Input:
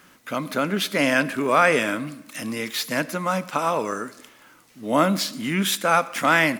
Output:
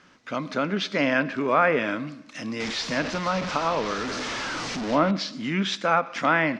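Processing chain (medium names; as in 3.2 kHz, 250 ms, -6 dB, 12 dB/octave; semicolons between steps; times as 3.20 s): 2.60–5.11 s: one-bit delta coder 64 kbps, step -21 dBFS; Chebyshev low-pass 5.7 kHz, order 3; low-pass that closes with the level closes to 2.2 kHz, closed at -14 dBFS; trim -2 dB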